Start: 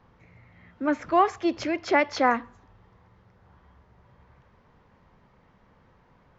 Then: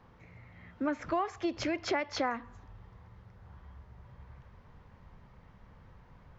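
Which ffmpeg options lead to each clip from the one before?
-af "asubboost=boost=2.5:cutoff=160,acompressor=threshold=0.0355:ratio=5"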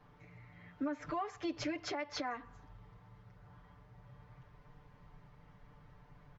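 -af "aecho=1:1:6.8:0.95,alimiter=limit=0.0668:level=0:latency=1:release=226,volume=0.531"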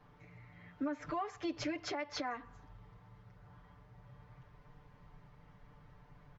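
-af anull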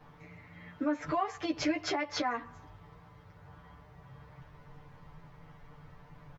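-filter_complex "[0:a]asplit=2[s0][s1];[s1]adelay=13,volume=0.708[s2];[s0][s2]amix=inputs=2:normalize=0,volume=1.78"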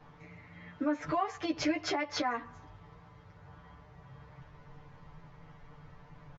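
-af "aresample=16000,aresample=44100"

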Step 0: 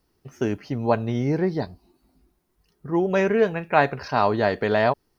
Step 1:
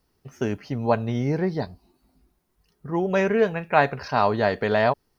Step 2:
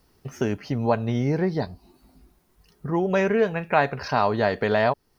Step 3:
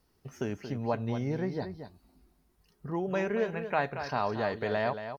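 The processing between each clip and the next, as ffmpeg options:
-af "equalizer=f=330:t=o:w=0.38:g=-4.5"
-af "acompressor=threshold=0.00891:ratio=1.5,volume=2.51"
-af "aecho=1:1:229:0.335,volume=0.376" -ar 48000 -c:a libmp3lame -b:a 128k

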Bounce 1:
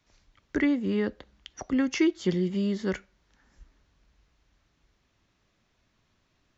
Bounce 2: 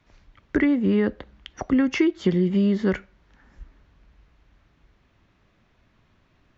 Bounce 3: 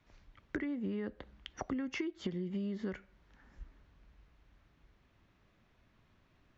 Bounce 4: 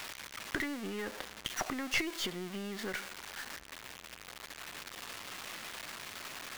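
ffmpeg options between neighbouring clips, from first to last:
-af "acompressor=threshold=0.0562:ratio=5,bass=f=250:g=2,treble=f=4000:g=-13,volume=2.51"
-af "acompressor=threshold=0.0398:ratio=8,volume=0.473"
-af "aeval=exprs='val(0)+0.5*0.00708*sgn(val(0))':c=same,highpass=f=1300:p=1,aeval=exprs='(tanh(50.1*val(0)+0.65)-tanh(0.65))/50.1':c=same,volume=4.47"

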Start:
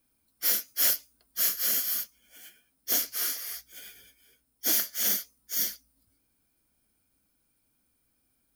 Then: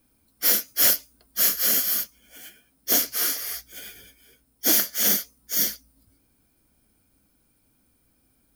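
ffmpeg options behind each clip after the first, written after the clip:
-af "tiltshelf=f=780:g=3,volume=2.66"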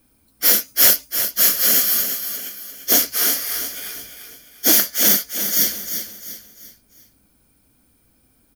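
-af "aecho=1:1:347|694|1041|1388:0.376|0.147|0.0572|0.0223,volume=1.88"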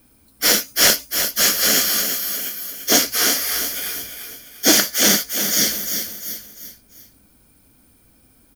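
-filter_complex "[0:a]acrossover=split=8500[s0][s1];[s1]acompressor=threshold=0.0501:ratio=4:attack=1:release=60[s2];[s0][s2]amix=inputs=2:normalize=0,volume=1.78"

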